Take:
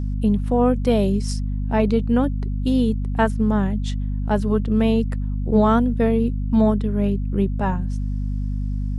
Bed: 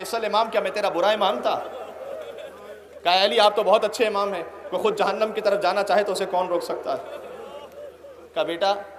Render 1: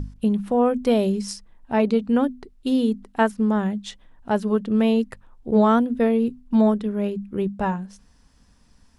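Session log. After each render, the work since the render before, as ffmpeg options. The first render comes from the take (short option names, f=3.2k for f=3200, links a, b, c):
-af "bandreject=f=50:t=h:w=6,bandreject=f=100:t=h:w=6,bandreject=f=150:t=h:w=6,bandreject=f=200:t=h:w=6,bandreject=f=250:t=h:w=6"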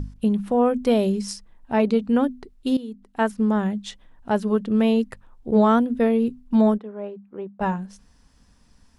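-filter_complex "[0:a]asplit=3[a][b][c];[a]afade=t=out:st=6.77:d=0.02[d];[b]bandpass=f=780:t=q:w=1.3,afade=t=in:st=6.77:d=0.02,afade=t=out:st=7.6:d=0.02[e];[c]afade=t=in:st=7.6:d=0.02[f];[d][e][f]amix=inputs=3:normalize=0,asplit=2[g][h];[g]atrim=end=2.77,asetpts=PTS-STARTPTS,afade=t=out:st=2.766:d=0.004:c=hsin:silence=0.188365[i];[h]atrim=start=2.77,asetpts=PTS-STARTPTS,afade=t=in:d=0.55:c=qua:silence=0.188365[j];[i][j]concat=n=2:v=0:a=1"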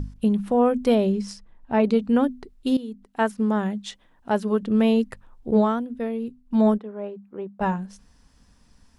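-filter_complex "[0:a]asettb=1/sr,asplit=3[a][b][c];[a]atrim=end=0.954[d];[b]atrim=start=0.95:end=1.84,asetpts=PTS-STARTPTS,afade=t=in:d=0.004:c=qsin,afade=t=out:st=0.886:d=0.004:c=qsin,aemphasis=mode=reproduction:type=50kf[e];[c]atrim=start=1.836[f];[d][e]acrossfade=d=0.004:c1=hsin:c2=qsin[g];[g][f]acrossfade=d=0.004:c1=qsin:c2=hsin,asettb=1/sr,asplit=3[h][i][j];[h]atrim=end=3.054[k];[i]atrim=start=3.05:end=4.63,asetpts=PTS-STARTPTS,afade=t=in:d=0.004:c=qsin,afade=t=out:st=1.576:d=0.004:c=qsin,lowshelf=f=100:g=-11[l];[j]atrim=start=4.626[m];[k][l]acrossfade=d=0.004:c1=hsin:c2=qsin[n];[n][m]acrossfade=d=0.004:c1=qsin:c2=hsin,asplit=3[o][p][q];[o]atrim=end=5.75,asetpts=PTS-STARTPTS,afade=t=out:st=5.53:d=0.22:silence=0.375837[r];[p]atrim=start=5.75:end=6.45,asetpts=PTS-STARTPTS,volume=-8.5dB[s];[q]atrim=start=6.45,asetpts=PTS-STARTPTS,afade=t=in:d=0.22:silence=0.375837[t];[r][s][t]concat=n=3:v=0:a=1"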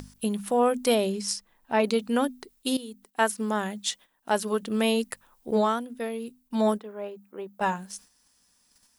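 -af "agate=range=-9dB:threshold=-51dB:ratio=16:detection=peak,aemphasis=mode=production:type=riaa"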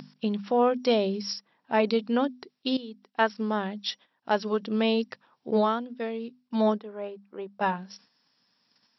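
-af "afftfilt=real='re*between(b*sr/4096,110,5700)':imag='im*between(b*sr/4096,110,5700)':win_size=4096:overlap=0.75,adynamicequalizer=threshold=0.00794:dfrequency=1800:dqfactor=0.92:tfrequency=1800:tqfactor=0.92:attack=5:release=100:ratio=0.375:range=2.5:mode=cutabove:tftype=bell"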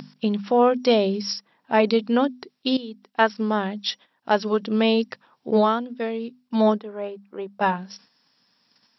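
-af "volume=5dB"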